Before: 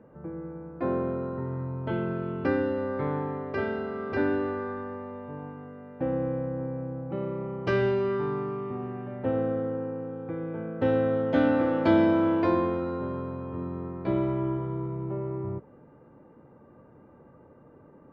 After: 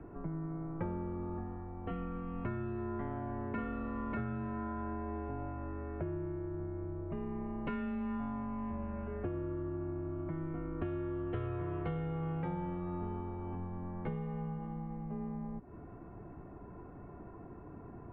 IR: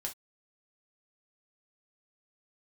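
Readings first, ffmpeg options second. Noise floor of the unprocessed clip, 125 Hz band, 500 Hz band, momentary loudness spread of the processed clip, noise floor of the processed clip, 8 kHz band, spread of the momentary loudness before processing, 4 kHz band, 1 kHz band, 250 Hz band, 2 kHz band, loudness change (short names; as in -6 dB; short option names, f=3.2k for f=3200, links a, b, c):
-54 dBFS, -5.5 dB, -14.5 dB, 13 LU, -50 dBFS, n/a, 13 LU, under -15 dB, -9.0 dB, -10.0 dB, -14.5 dB, -10.5 dB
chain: -af "acompressor=threshold=-40dB:ratio=10,highpass=f=190:t=q:w=0.5412,highpass=f=190:t=q:w=1.307,lowpass=f=3.2k:t=q:w=0.5176,lowpass=f=3.2k:t=q:w=0.7071,lowpass=f=3.2k:t=q:w=1.932,afreqshift=-170,volume=5.5dB"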